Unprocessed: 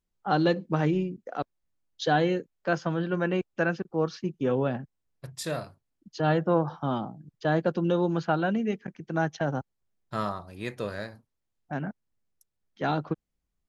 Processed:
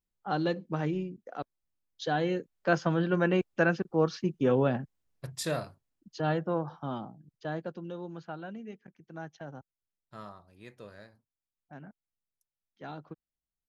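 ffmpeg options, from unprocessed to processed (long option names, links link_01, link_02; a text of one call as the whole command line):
ffmpeg -i in.wav -af "volume=1dB,afade=type=in:start_time=2.17:duration=0.57:silence=0.446684,afade=type=out:start_time=5.3:duration=1.23:silence=0.398107,afade=type=out:start_time=7.13:duration=0.74:silence=0.398107" out.wav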